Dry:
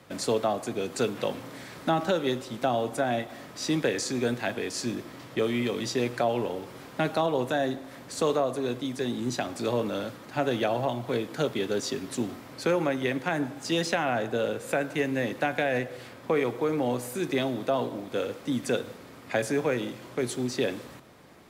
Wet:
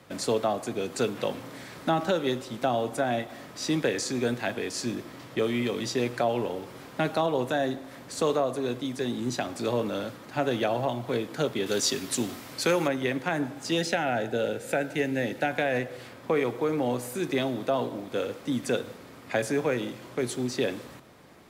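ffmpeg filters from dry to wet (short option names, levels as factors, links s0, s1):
-filter_complex "[0:a]asettb=1/sr,asplit=3[s0][s1][s2];[s0]atrim=end=11.664[s3];[s1]atrim=start=11.66:end=12.88,asetpts=PTS-STARTPTS,afade=t=in:d=0.004:c=qsin,afade=t=out:st=1.216:d=0.004:c=qsin,highshelf=f=2300:g=10[s4];[s2]atrim=start=12.876[s5];[s3][s4]acrossfade=d=0.004:c1=hsin:c2=qsin[s6];[s6][s5]acrossfade=d=0.004:c1=qsin:c2=hsin,asettb=1/sr,asplit=3[s7][s8][s9];[s7]atrim=end=13.784[s10];[s8]atrim=start=13.78:end=15.51,asetpts=PTS-STARTPTS,afade=t=in:d=0.004:c=qsin,afade=t=out:st=1.726:d=0.004:c=qsin,asuperstop=centerf=1100:order=4:qfactor=3.7[s11];[s9]atrim=start=15.506[s12];[s10][s11]acrossfade=d=0.004:c1=hsin:c2=qsin[s13];[s13][s12]acrossfade=d=0.004:c1=qsin:c2=hsin"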